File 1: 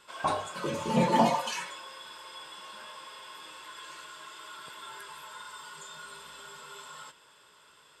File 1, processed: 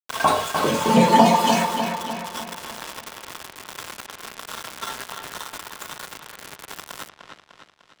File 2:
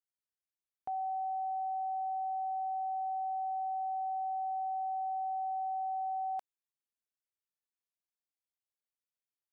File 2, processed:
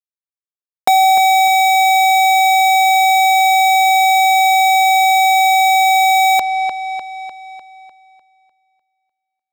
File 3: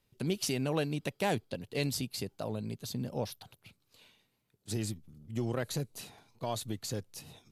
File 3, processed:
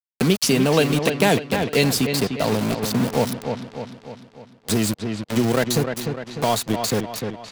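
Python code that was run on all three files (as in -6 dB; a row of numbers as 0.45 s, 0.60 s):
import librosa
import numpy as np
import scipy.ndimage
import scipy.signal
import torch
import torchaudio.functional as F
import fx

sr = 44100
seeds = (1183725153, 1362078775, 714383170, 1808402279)

p1 = x + 0.31 * np.pad(x, (int(4.4 * sr / 1000.0), 0))[:len(x)]
p2 = np.where(np.abs(p1) >= 10.0 ** (-38.5 / 20.0), p1, 0.0)
p3 = fx.low_shelf(p2, sr, hz=74.0, db=-5.0)
p4 = p3 + fx.echo_wet_lowpass(p3, sr, ms=300, feedback_pct=40, hz=3800.0, wet_db=-8.0, dry=0)
p5 = fx.band_squash(p4, sr, depth_pct=40)
y = librosa.util.normalize(p5) * 10.0 ** (-1.5 / 20.0)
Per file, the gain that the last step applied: +12.5 dB, +27.5 dB, +15.0 dB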